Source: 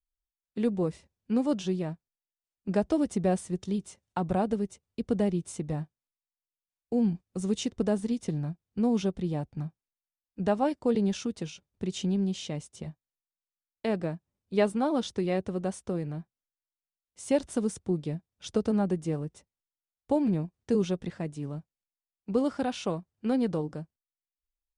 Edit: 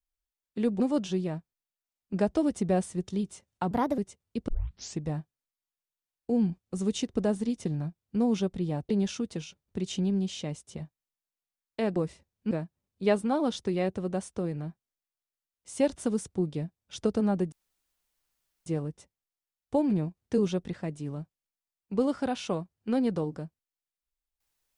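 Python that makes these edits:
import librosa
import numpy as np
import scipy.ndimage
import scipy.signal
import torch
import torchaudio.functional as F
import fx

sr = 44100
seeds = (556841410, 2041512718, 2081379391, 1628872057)

y = fx.edit(x, sr, fx.move(start_s=0.8, length_s=0.55, to_s=14.02),
    fx.speed_span(start_s=4.26, length_s=0.35, speed=1.29),
    fx.tape_start(start_s=5.11, length_s=0.52),
    fx.cut(start_s=9.52, length_s=1.43),
    fx.insert_room_tone(at_s=19.03, length_s=1.14), tone=tone)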